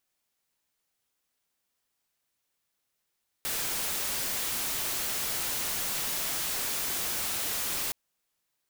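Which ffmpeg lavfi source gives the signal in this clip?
ffmpeg -f lavfi -i "anoisesrc=color=white:amplitude=0.0461:duration=4.47:sample_rate=44100:seed=1" out.wav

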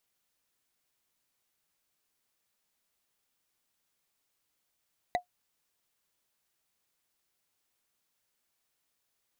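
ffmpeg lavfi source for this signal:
ffmpeg -f lavfi -i "aevalsrc='0.0944*pow(10,-3*t/0.11)*sin(2*PI*717*t)+0.0501*pow(10,-3*t/0.033)*sin(2*PI*1976.8*t)+0.0266*pow(10,-3*t/0.015)*sin(2*PI*3874.7*t)+0.0141*pow(10,-3*t/0.008)*sin(2*PI*6405*t)+0.0075*pow(10,-3*t/0.005)*sin(2*PI*9564.8*t)':duration=0.45:sample_rate=44100" out.wav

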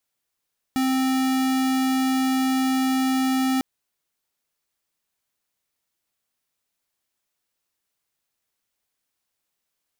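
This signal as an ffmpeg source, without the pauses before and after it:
ffmpeg -f lavfi -i "aevalsrc='0.0841*(2*lt(mod(262*t,1),0.5)-1)':duration=2.85:sample_rate=44100" out.wav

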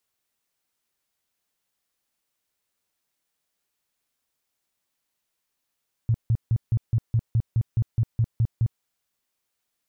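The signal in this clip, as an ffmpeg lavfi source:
ffmpeg -f lavfi -i "aevalsrc='0.141*sin(2*PI*114*mod(t,0.21))*lt(mod(t,0.21),6/114)':duration=2.73:sample_rate=44100" out.wav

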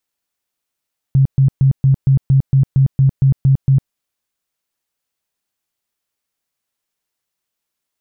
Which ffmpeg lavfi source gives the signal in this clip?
ffmpeg -f lavfi -i "aevalsrc='0.422*sin(2*PI*135*mod(t,0.23))*lt(mod(t,0.23),14/135)':duration=2.76:sample_rate=44100" out.wav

